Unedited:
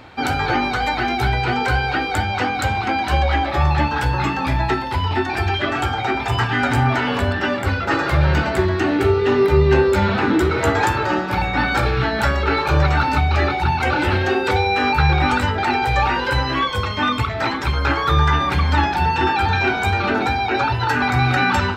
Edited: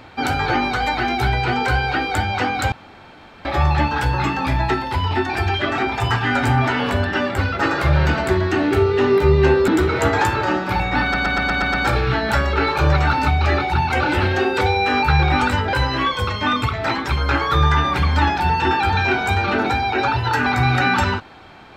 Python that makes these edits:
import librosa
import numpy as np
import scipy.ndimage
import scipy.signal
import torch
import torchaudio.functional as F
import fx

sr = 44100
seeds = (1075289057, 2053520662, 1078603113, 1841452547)

y = fx.edit(x, sr, fx.room_tone_fill(start_s=2.72, length_s=0.73),
    fx.cut(start_s=5.78, length_s=0.28),
    fx.cut(start_s=9.96, length_s=0.34),
    fx.stutter(start_s=11.64, slice_s=0.12, count=7),
    fx.cut(start_s=15.63, length_s=0.66), tone=tone)